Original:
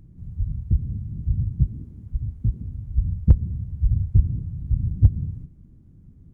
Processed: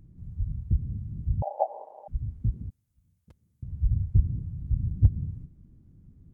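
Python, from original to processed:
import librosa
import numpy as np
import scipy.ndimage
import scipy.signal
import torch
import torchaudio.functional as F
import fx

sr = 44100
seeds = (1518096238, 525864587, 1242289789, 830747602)

y = fx.ring_mod(x, sr, carrier_hz=700.0, at=(1.42, 2.08))
y = fx.differentiator(y, sr, at=(2.7, 3.63))
y = y * librosa.db_to_amplitude(-4.5)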